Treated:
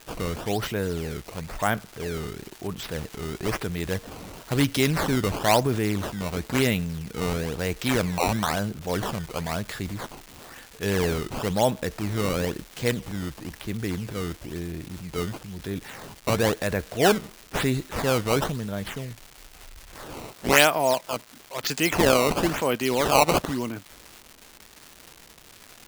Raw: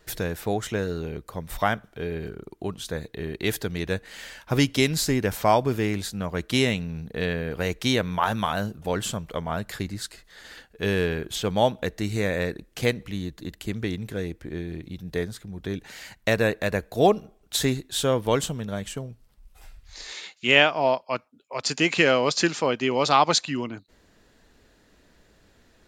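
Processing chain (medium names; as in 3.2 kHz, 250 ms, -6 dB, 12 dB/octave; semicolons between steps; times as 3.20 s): decimation with a swept rate 15×, swing 160% 1 Hz; transient shaper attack -3 dB, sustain +5 dB; crackle 470 per s -33 dBFS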